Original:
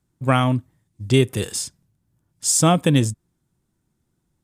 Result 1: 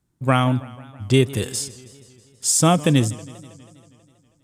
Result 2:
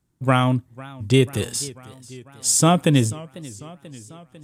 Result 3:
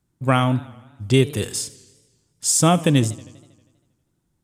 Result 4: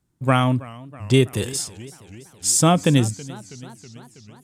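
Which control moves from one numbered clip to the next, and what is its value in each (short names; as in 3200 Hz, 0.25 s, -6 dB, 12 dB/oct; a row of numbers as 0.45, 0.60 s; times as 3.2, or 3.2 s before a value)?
warbling echo, time: 161, 493, 80, 328 ms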